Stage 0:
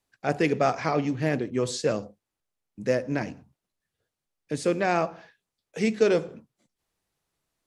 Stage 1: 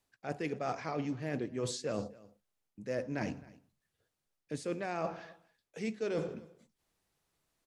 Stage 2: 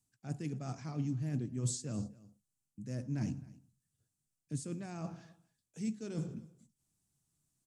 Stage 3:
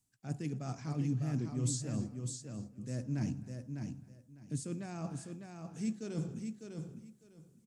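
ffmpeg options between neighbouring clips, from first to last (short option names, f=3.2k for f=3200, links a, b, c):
-af "areverse,acompressor=threshold=-32dB:ratio=12,areverse,aecho=1:1:262:0.0841"
-af "equalizer=f=125:t=o:w=1:g=12,equalizer=f=250:t=o:w=1:g=5,equalizer=f=500:t=o:w=1:g=-11,equalizer=f=1k:t=o:w=1:g=-4,equalizer=f=2k:t=o:w=1:g=-8,equalizer=f=4k:t=o:w=1:g=-4,equalizer=f=8k:t=o:w=1:g=11,volume=-4.5dB"
-af "aecho=1:1:602|1204|1806:0.501|0.0952|0.0181,volume=1dB"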